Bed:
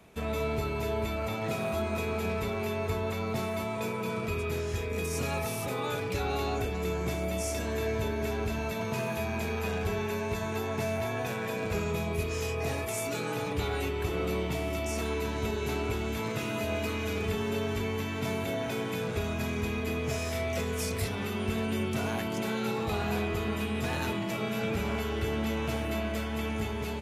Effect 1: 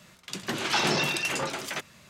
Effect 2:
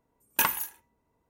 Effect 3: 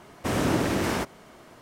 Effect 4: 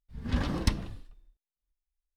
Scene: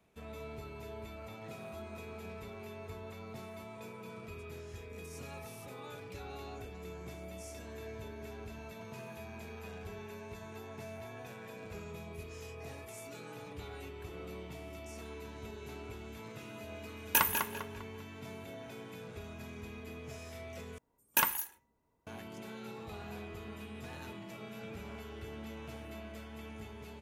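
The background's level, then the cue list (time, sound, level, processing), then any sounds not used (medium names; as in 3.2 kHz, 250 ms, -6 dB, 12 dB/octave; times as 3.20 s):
bed -14.5 dB
16.76 s: add 2 -2.5 dB + filtered feedback delay 199 ms, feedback 39%, low-pass 4.3 kHz, level -5 dB
20.78 s: replace with 2 -3.5 dB
not used: 1, 3, 4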